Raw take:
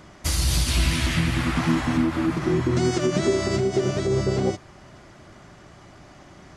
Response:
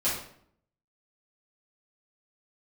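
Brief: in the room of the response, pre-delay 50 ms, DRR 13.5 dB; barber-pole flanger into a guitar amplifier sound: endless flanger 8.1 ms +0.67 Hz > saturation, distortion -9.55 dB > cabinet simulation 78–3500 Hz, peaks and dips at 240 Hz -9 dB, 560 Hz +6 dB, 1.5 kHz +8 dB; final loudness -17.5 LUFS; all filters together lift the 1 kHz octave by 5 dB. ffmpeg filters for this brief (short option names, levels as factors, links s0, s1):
-filter_complex "[0:a]equalizer=f=1000:t=o:g=4,asplit=2[s0][s1];[1:a]atrim=start_sample=2205,adelay=50[s2];[s1][s2]afir=irnorm=-1:irlink=0,volume=0.0708[s3];[s0][s3]amix=inputs=2:normalize=0,asplit=2[s4][s5];[s5]adelay=8.1,afreqshift=0.67[s6];[s4][s6]amix=inputs=2:normalize=1,asoftclip=threshold=0.0562,highpass=78,equalizer=f=240:t=q:w=4:g=-9,equalizer=f=560:t=q:w=4:g=6,equalizer=f=1500:t=q:w=4:g=8,lowpass=f=3500:w=0.5412,lowpass=f=3500:w=1.3066,volume=4.22"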